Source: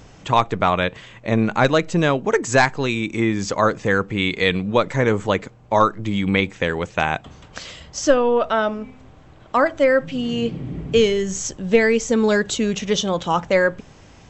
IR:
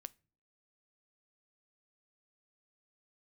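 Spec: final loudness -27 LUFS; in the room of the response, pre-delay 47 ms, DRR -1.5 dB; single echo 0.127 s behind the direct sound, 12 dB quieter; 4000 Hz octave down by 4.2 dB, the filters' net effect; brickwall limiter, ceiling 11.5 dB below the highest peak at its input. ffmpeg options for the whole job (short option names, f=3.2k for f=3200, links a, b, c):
-filter_complex "[0:a]equalizer=f=4k:t=o:g=-5.5,alimiter=limit=-14dB:level=0:latency=1,aecho=1:1:127:0.251,asplit=2[a][b];[1:a]atrim=start_sample=2205,adelay=47[c];[b][c]afir=irnorm=-1:irlink=0,volume=7dB[d];[a][d]amix=inputs=2:normalize=0,volume=-6dB"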